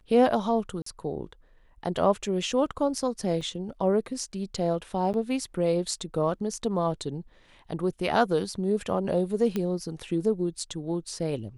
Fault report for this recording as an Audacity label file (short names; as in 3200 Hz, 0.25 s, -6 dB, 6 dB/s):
0.820000	0.860000	gap 44 ms
3.410000	3.410000	gap 4.5 ms
5.130000	5.140000	gap 9.1 ms
9.560000	9.560000	pop -16 dBFS